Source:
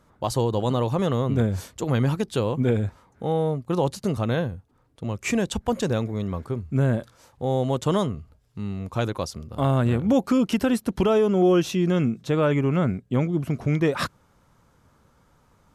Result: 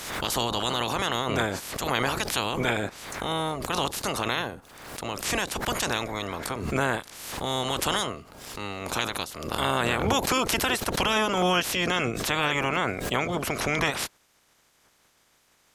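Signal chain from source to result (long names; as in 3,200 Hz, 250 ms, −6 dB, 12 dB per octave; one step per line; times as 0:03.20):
ceiling on every frequency bin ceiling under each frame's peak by 28 dB
background raised ahead of every attack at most 49 dB per second
level −4.5 dB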